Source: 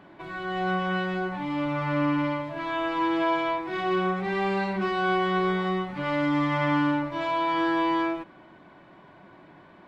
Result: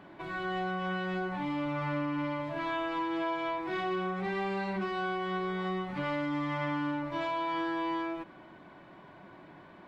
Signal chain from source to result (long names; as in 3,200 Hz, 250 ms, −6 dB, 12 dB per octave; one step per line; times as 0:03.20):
downward compressor, threshold −29 dBFS, peak gain reduction 9 dB
level −1 dB